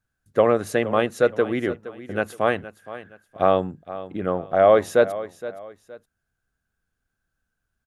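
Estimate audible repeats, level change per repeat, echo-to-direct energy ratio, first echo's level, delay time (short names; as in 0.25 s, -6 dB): 2, -9.5 dB, -14.5 dB, -15.0 dB, 0.468 s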